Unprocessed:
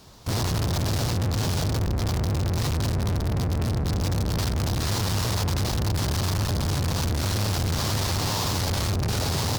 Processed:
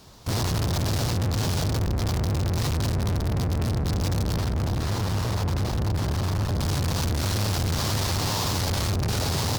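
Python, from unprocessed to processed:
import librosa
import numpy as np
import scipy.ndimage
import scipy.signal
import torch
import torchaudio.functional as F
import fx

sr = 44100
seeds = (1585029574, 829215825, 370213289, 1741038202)

y = fx.high_shelf(x, sr, hz=2500.0, db=-8.5, at=(4.38, 6.6))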